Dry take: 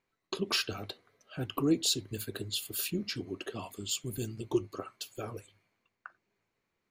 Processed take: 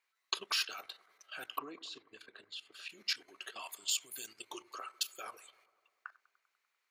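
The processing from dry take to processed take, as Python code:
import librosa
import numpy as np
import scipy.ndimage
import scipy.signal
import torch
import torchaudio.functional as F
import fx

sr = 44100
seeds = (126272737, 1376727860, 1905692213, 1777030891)

y = scipy.signal.sosfilt(scipy.signal.butter(2, 1200.0, 'highpass', fs=sr, output='sos'), x)
y = fx.level_steps(y, sr, step_db=13)
y = fx.spacing_loss(y, sr, db_at_10k=32, at=(1.57, 2.89), fade=0.02)
y = fx.echo_bbd(y, sr, ms=98, stages=1024, feedback_pct=71, wet_db=-20.5)
y = y * librosa.db_to_amplitude(7.5)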